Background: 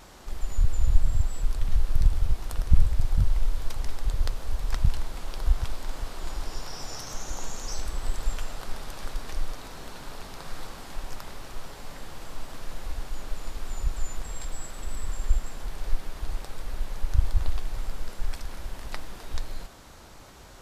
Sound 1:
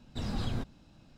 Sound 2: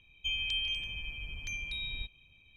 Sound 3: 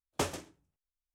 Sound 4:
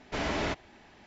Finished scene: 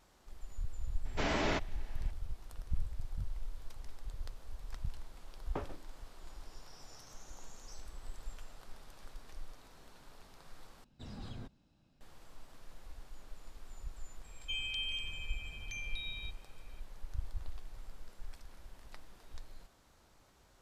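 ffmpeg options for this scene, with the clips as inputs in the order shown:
-filter_complex "[0:a]volume=-17dB[a];[3:a]lowpass=1.5k[b];[a]asplit=2[c][d];[c]atrim=end=10.844[e];[1:a]atrim=end=1.17,asetpts=PTS-STARTPTS,volume=-12.5dB[f];[d]atrim=start=12.006[g];[4:a]atrim=end=1.06,asetpts=PTS-STARTPTS,volume=-2dB,afade=t=in:d=0.004:c=hsin,afade=t=out:st=1.056:d=0.004:c=hsin,adelay=1050[h];[b]atrim=end=1.14,asetpts=PTS-STARTPTS,volume=-7.5dB,afade=t=in:d=0.004:c=hsin,afade=t=out:st=1.136:d=0.004:c=hsin,adelay=5360[i];[2:a]atrim=end=2.56,asetpts=PTS-STARTPTS,volume=-5dB,afade=t=in:d=0.004:c=hsin,afade=t=out:st=2.556:d=0.004:c=hsin,adelay=14240[j];[e][f]acrossfade=d=0.004:c1=hsin:c2=hsin[k];[k][g]acrossfade=d=0.004:c1=hsin:c2=hsin[l];[l][h][i][j]amix=inputs=4:normalize=0"

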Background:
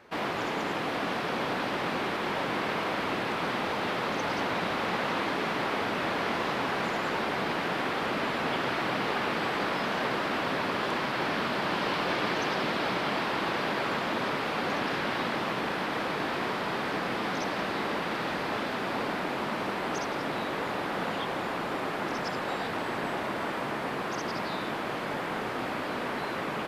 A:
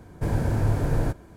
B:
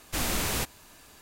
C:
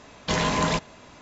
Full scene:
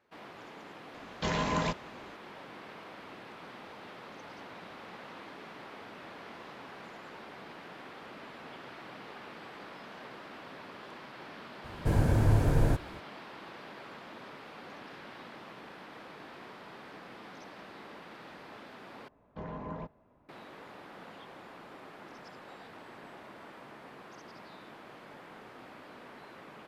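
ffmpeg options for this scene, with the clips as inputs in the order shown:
-filter_complex "[3:a]asplit=2[a][b];[0:a]volume=-17.5dB[c];[a]lowpass=f=3.7k:p=1[d];[b]lowpass=1k[e];[c]asplit=2[f][g];[f]atrim=end=19.084[h];[e]atrim=end=1.21,asetpts=PTS-STARTPTS,volume=-15dB[i];[g]atrim=start=20.286[j];[d]atrim=end=1.21,asetpts=PTS-STARTPTS,volume=-6.5dB,afade=t=in:d=0.004:c=hsin,afade=t=out:st=1.206:d=0.004:c=hsin,adelay=940[k];[1:a]atrim=end=1.36,asetpts=PTS-STARTPTS,volume=-1.5dB,afade=t=in:d=0.004:c=hsin,afade=t=out:st=1.356:d=0.004:c=hsin,adelay=11640[l];[h][i]acrossfade=d=0.004:c1=hsin:c2=hsin[m];[m][j]acrossfade=d=0.004:c1=hsin:c2=hsin[n];[n][k][l]amix=inputs=3:normalize=0"

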